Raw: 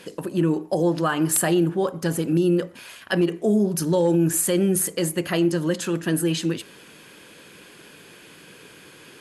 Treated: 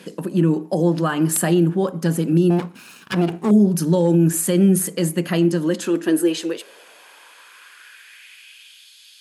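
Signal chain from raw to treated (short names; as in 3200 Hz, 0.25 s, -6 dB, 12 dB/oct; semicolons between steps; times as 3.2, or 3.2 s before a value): 2.5–3.51 minimum comb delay 0.74 ms; high-pass sweep 180 Hz -> 3800 Hz, 5.43–8.92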